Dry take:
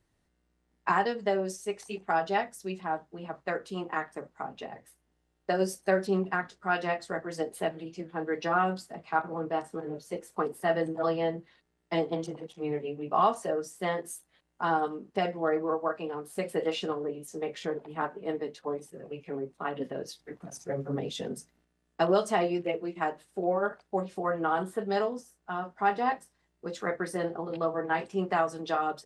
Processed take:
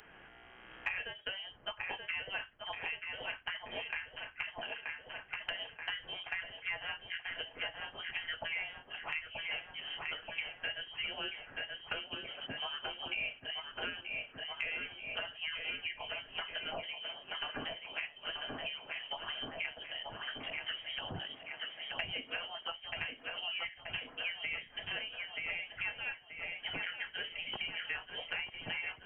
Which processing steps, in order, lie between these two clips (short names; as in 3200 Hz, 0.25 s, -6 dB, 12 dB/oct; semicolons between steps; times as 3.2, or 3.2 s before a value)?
recorder AGC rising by 11 dB/s; HPF 290 Hz 12 dB/oct; differentiator; inverted band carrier 3500 Hz; darkening echo 0.93 s, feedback 58%, low-pass 2700 Hz, level -6.5 dB; three-band squash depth 100%; gain +6.5 dB